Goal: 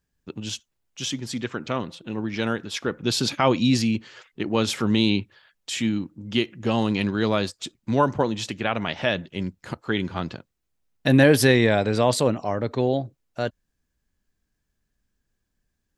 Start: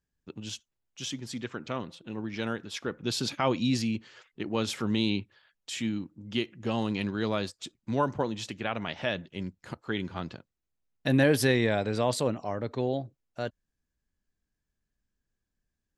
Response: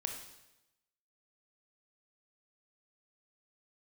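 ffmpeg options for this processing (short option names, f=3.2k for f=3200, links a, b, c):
-af "volume=7dB"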